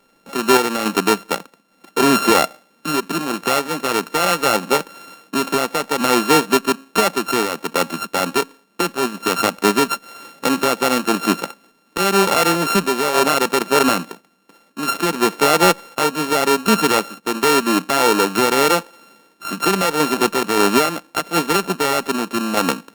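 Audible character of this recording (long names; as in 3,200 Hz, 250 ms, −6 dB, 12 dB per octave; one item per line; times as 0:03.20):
a buzz of ramps at a fixed pitch in blocks of 32 samples
sample-and-hold tremolo
Opus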